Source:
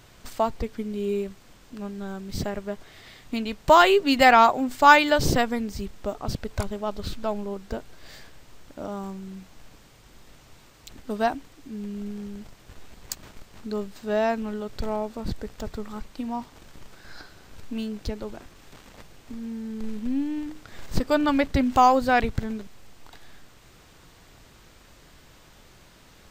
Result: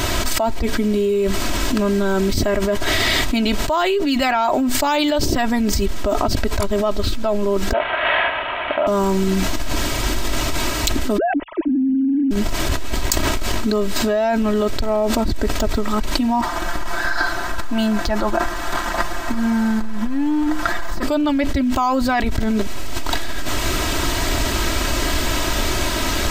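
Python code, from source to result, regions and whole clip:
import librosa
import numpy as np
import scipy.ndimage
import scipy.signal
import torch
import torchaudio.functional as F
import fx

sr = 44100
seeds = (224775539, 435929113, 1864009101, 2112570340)

y = fx.chain(x, sr, fx.cvsd(bps=16000),
    fx.highpass(hz=170.0, slope=6),
    fx.low_shelf_res(hz=450.0, db=-12.0, q=1.5), at=(7.73, 8.87))
y = fx.chain(y, sr, fx.sine_speech(),
    fx.tilt_eq(slope=-4.5),
    fx.notch(hz=750.0, q=7.1), at=(11.18, 12.31))
y = fx.chain(y, sr, fx.band_shelf(hz=1100.0, db=9.0, octaves=1.7),
    fx.comb(ms=5.8, depth=0.55),
    fx.upward_expand(threshold_db=-35.0, expansion=1.5), at=(16.41, 21.03))
y = y + 0.68 * np.pad(y, (int(3.1 * sr / 1000.0), 0))[:len(y)]
y = fx.env_flatten(y, sr, amount_pct=100)
y = F.gain(torch.from_numpy(y), -9.5).numpy()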